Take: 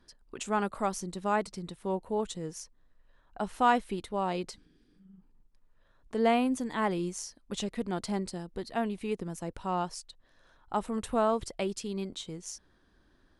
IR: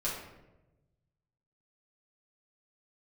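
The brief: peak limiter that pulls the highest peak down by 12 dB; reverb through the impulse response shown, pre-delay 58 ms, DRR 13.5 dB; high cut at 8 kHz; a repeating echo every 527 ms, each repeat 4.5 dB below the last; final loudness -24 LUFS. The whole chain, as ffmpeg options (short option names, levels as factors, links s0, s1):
-filter_complex "[0:a]lowpass=8000,alimiter=level_in=1.06:limit=0.0631:level=0:latency=1,volume=0.944,aecho=1:1:527|1054|1581|2108|2635|3162|3689|4216|4743:0.596|0.357|0.214|0.129|0.0772|0.0463|0.0278|0.0167|0.01,asplit=2[s0][s1];[1:a]atrim=start_sample=2205,adelay=58[s2];[s1][s2]afir=irnorm=-1:irlink=0,volume=0.119[s3];[s0][s3]amix=inputs=2:normalize=0,volume=3.76"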